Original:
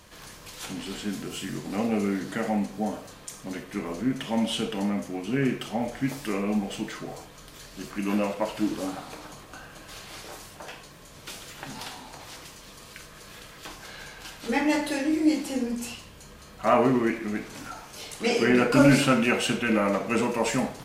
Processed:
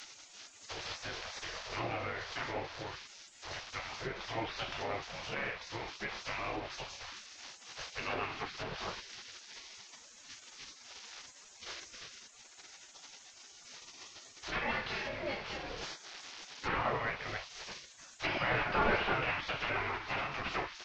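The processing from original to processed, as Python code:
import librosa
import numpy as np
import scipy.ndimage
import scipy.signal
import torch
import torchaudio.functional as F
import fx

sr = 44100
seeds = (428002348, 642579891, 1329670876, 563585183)

y = fx.delta_mod(x, sr, bps=32000, step_db=-35.5)
y = fx.env_lowpass_down(y, sr, base_hz=2700.0, full_db=-22.0)
y = fx.spec_gate(y, sr, threshold_db=-15, keep='weak')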